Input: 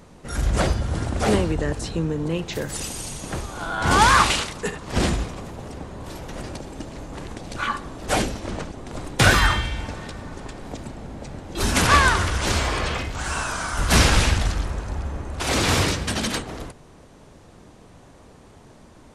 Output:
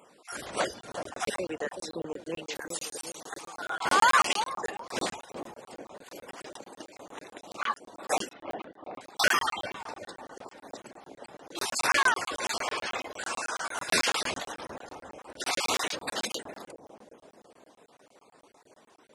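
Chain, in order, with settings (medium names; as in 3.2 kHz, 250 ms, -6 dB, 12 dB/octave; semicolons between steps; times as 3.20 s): random holes in the spectrogram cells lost 26%; high-pass 430 Hz 12 dB/octave; reverb removal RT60 0.57 s; 8.33–9.01 s: low-pass 3 kHz 24 dB/octave; bucket-brigade echo 378 ms, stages 2048, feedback 51%, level -7 dB; crackling interface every 0.11 s, samples 1024, zero, from 0.81 s; trim -3.5 dB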